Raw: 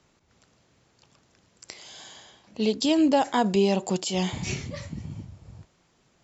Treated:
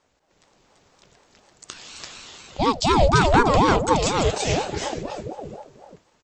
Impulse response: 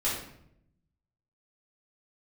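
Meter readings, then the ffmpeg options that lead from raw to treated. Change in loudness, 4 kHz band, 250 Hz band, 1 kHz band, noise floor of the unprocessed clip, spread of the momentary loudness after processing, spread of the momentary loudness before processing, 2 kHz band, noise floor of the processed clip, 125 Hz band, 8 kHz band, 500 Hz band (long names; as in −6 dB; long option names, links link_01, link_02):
+5.0 dB, +4.5 dB, 0.0 dB, +10.0 dB, −66 dBFS, 21 LU, 22 LU, +10.0 dB, −67 dBFS, +8.0 dB, can't be measured, +5.0 dB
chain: -af "dynaudnorm=framelen=120:gausssize=7:maxgain=7dB,aecho=1:1:337|343:0.596|0.398,aeval=exprs='val(0)*sin(2*PI*480*n/s+480*0.5/4.1*sin(2*PI*4.1*n/s))':channel_layout=same"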